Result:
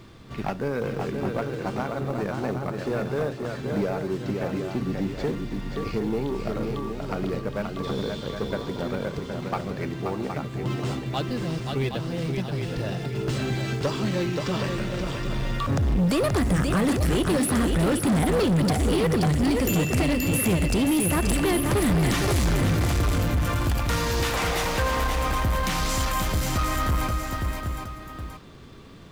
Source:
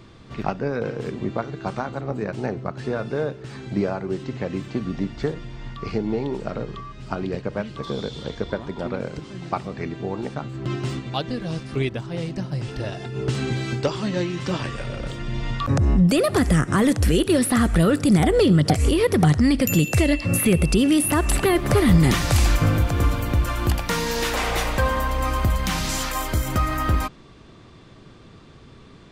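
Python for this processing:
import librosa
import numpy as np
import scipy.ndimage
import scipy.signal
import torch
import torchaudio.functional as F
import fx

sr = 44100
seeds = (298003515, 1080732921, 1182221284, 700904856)

p1 = x + 10.0 ** (-9.0 / 20.0) * np.pad(x, (int(768 * sr / 1000.0), 0))[:len(x)]
p2 = fx.quant_companded(p1, sr, bits=4)
p3 = p1 + (p2 * librosa.db_to_amplitude(-10.5))
p4 = p3 + 10.0 ** (-6.0 / 20.0) * np.pad(p3, (int(528 * sr / 1000.0), 0))[:len(p3)]
p5 = 10.0 ** (-15.0 / 20.0) * np.tanh(p4 / 10.0 ** (-15.0 / 20.0))
y = p5 * librosa.db_to_amplitude(-3.0)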